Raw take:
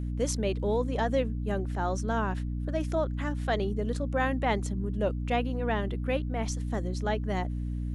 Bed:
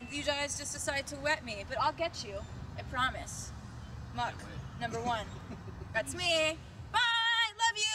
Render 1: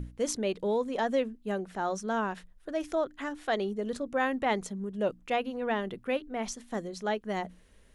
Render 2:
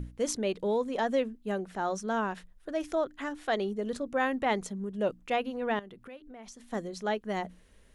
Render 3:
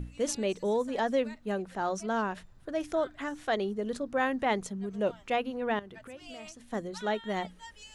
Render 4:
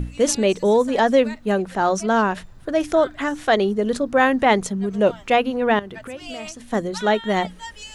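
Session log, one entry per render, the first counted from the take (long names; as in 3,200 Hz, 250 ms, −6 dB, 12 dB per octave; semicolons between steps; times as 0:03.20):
mains-hum notches 60/120/180/240/300 Hz
0:05.79–0:06.73: downward compressor 4 to 1, threshold −46 dBFS
mix in bed −19 dB
level +12 dB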